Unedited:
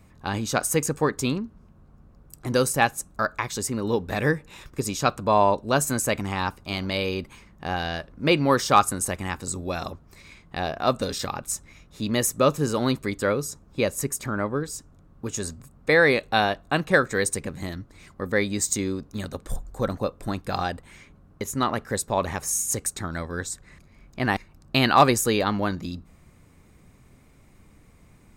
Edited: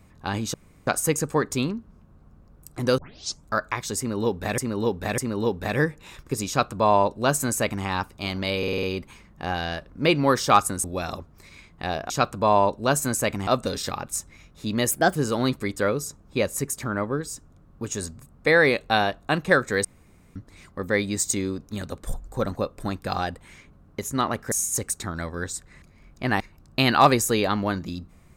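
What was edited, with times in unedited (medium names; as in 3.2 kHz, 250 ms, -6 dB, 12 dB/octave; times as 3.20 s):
0.54 s: insert room tone 0.33 s
2.65 s: tape start 0.49 s
3.65–4.25 s: loop, 3 plays
4.95–6.32 s: copy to 10.83 s
7.05 s: stutter 0.05 s, 6 plays
9.06–9.57 s: delete
12.27–12.58 s: speed 126%
17.27–17.78 s: room tone
21.94–22.48 s: delete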